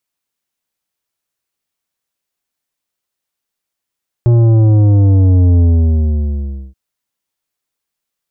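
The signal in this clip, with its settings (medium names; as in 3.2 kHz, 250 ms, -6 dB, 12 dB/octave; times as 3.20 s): sub drop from 120 Hz, over 2.48 s, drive 10 dB, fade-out 1.14 s, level -7 dB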